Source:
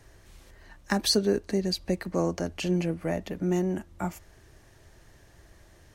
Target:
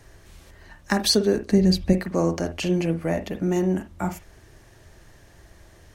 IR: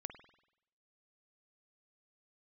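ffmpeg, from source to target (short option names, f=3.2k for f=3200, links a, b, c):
-filter_complex "[0:a]asettb=1/sr,asplit=3[a][b][c];[a]atrim=end=1.524[d];[b]atrim=start=1.52:end=1.93,asetpts=PTS-STARTPTS,afade=t=in:d=0.004:c=qsin,afade=t=out:st=0.406:d=0.004:c=qsin,bass=f=250:g=10,treble=f=4k:g=-1[e];[c]atrim=start=1.926[f];[d][e]acrossfade=d=0.004:c1=hsin:c2=qsin[g];[g][f]acrossfade=d=0.004:c1=qsin:c2=hsin[h];[1:a]atrim=start_sample=2205,afade=t=out:st=0.14:d=0.01,atrim=end_sample=6615[i];[h][i]afir=irnorm=-1:irlink=0,volume=8.5dB"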